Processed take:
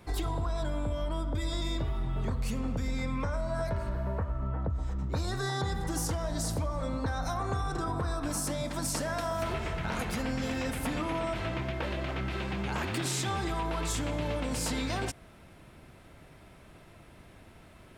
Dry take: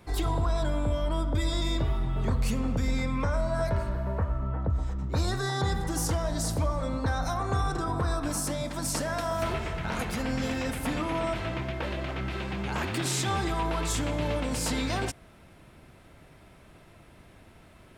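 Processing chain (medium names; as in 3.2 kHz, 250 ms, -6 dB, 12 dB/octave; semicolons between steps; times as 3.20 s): compression, threshold -28 dBFS, peak gain reduction 6 dB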